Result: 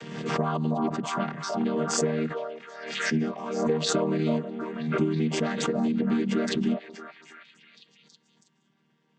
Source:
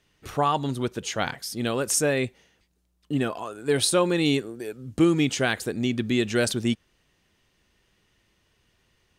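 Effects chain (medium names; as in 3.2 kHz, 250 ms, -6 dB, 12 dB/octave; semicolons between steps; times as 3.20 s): vocoder on a held chord major triad, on D#3; compression, threshold -25 dBFS, peak gain reduction 10 dB; on a send: repeats whose band climbs or falls 324 ms, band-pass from 720 Hz, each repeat 0.7 oct, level -1 dB; on the sum: swell ahead of each attack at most 50 dB/s; trim +2.5 dB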